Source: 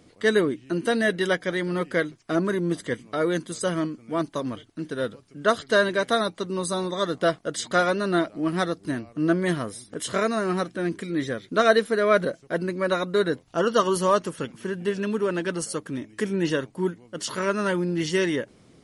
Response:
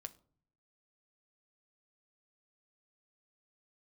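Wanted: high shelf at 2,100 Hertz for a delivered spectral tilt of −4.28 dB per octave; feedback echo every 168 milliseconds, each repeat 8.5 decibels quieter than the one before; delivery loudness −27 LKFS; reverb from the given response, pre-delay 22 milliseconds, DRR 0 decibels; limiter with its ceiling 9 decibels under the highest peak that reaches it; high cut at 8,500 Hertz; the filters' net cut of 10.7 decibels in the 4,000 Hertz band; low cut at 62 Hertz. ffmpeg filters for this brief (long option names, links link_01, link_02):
-filter_complex "[0:a]highpass=62,lowpass=8500,highshelf=frequency=2100:gain=-5,equalizer=frequency=4000:width_type=o:gain=-8.5,alimiter=limit=-15.5dB:level=0:latency=1,aecho=1:1:168|336|504|672:0.376|0.143|0.0543|0.0206,asplit=2[link_01][link_02];[1:a]atrim=start_sample=2205,adelay=22[link_03];[link_02][link_03]afir=irnorm=-1:irlink=0,volume=5dB[link_04];[link_01][link_04]amix=inputs=2:normalize=0,volume=-3.5dB"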